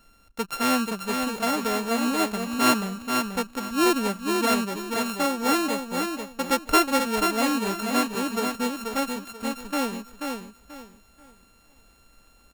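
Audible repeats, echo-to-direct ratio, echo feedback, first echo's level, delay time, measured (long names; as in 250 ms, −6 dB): 3, −4.5 dB, 27%, −5.0 dB, 485 ms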